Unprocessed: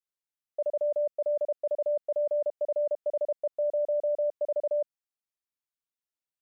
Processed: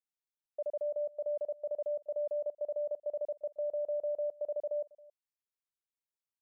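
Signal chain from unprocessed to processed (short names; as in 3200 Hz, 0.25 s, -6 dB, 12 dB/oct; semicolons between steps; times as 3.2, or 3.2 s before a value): echo 0.273 s -22.5 dB; gain -7 dB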